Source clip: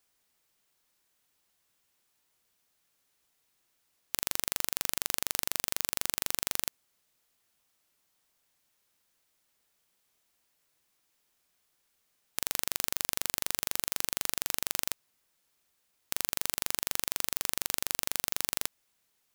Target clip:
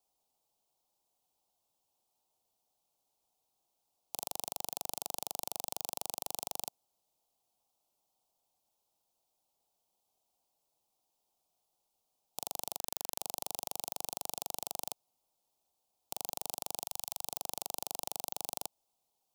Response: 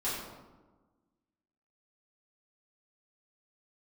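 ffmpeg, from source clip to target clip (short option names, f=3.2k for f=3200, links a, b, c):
-filter_complex "[0:a]asettb=1/sr,asplit=3[a][b][c];[a]atrim=end=16.834[d];[b]atrim=start=16.83:end=17.25,asetpts=PTS-STARTPTS,afade=t=in:d=0.004:c=qsin,afade=t=out:st=0.416:d=0.004:c=qsin,equalizer=f=370:t=o:w=1.7:g=-13[e];[c]atrim=start=17.246[f];[d][e]acrossfade=d=0.004:c1=hsin:c2=qsin[g];[g][f]acrossfade=d=0.004:c1=qsin:c2=hsin,acrossover=split=140|2500[h][i][j];[h]alimiter=level_in=31dB:limit=-24dB:level=0:latency=1,volume=-31dB[k];[i]lowpass=f=790:t=q:w=3.9[l];[k][l][j]amix=inputs=3:normalize=0,asplit=3[m][n][o];[m]afade=t=out:st=12.77:d=0.02[p];[n]aeval=exprs='sgn(val(0))*max(abs(val(0))-0.00631,0)':c=same,afade=t=in:st=12.77:d=0.02,afade=t=out:st=13.18:d=0.02[q];[o]afade=t=in:st=13.18:d=0.02[r];[p][q][r]amix=inputs=3:normalize=0,volume=-7dB"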